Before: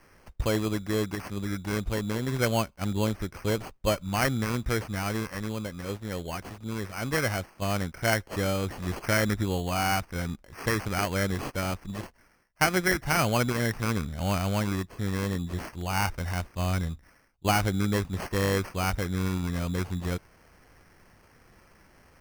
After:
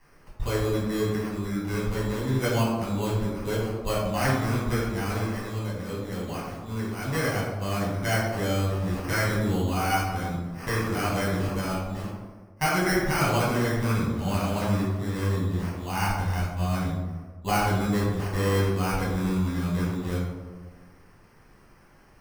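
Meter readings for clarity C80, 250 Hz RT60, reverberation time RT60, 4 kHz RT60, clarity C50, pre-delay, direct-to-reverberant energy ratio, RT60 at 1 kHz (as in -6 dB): 3.0 dB, 1.6 s, 1.4 s, 0.65 s, 1.0 dB, 5 ms, -7.0 dB, 1.3 s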